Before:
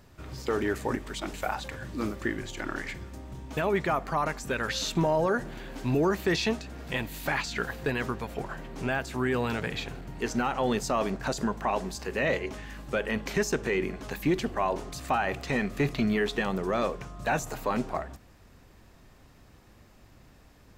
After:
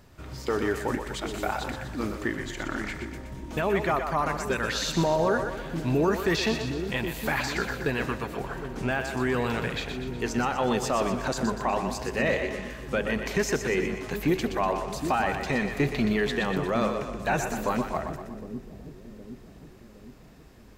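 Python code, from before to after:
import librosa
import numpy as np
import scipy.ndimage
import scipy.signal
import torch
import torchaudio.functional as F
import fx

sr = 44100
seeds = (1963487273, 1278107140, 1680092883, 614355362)

y = fx.echo_split(x, sr, split_hz=400.0, low_ms=764, high_ms=122, feedback_pct=52, wet_db=-7)
y = y * 10.0 ** (1.0 / 20.0)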